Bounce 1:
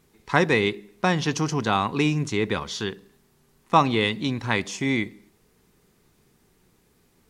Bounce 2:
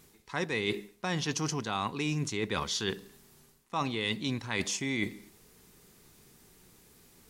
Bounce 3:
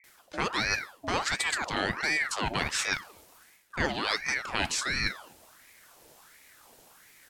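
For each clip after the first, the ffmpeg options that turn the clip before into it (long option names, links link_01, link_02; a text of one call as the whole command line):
ffmpeg -i in.wav -af "highshelf=frequency=3300:gain=8,areverse,acompressor=threshold=-29dB:ratio=12,areverse,volume=1dB" out.wav
ffmpeg -i in.wav -filter_complex "[0:a]acrossover=split=240[link_01][link_02];[link_02]adelay=40[link_03];[link_01][link_03]amix=inputs=2:normalize=0,aeval=exprs='val(0)*sin(2*PI*1300*n/s+1300*0.65/1.4*sin(2*PI*1.4*n/s))':channel_layout=same,volume=6dB" out.wav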